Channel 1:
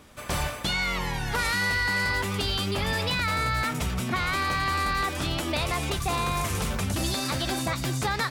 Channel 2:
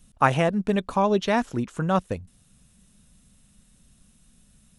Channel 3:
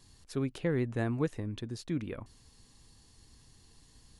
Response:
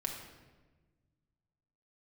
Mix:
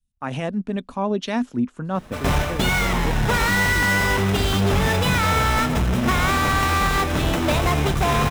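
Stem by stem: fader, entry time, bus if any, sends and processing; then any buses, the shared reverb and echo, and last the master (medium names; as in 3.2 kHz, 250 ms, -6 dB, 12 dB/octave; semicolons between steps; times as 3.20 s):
0.0 dB, 1.95 s, send -5.5 dB, square wave that keeps the level; band-stop 4.5 kHz, Q 10
-3.0 dB, 0.00 s, no send, peaking EQ 250 Hz +11 dB 0.34 oct; peak limiter -14 dBFS, peak gain reduction 9 dB; three bands expanded up and down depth 100%
0.0 dB, 1.85 s, no send, none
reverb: on, RT60 1.3 s, pre-delay 5 ms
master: treble shelf 5.4 kHz -7.5 dB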